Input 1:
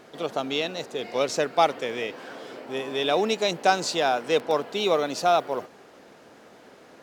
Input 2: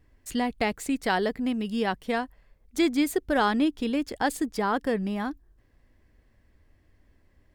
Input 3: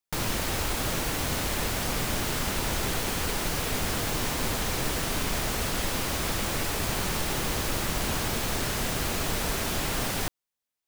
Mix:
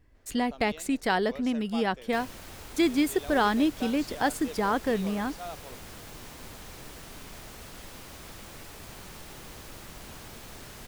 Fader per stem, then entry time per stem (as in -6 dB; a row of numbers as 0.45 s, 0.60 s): -19.5 dB, -0.5 dB, -16.0 dB; 0.15 s, 0.00 s, 2.00 s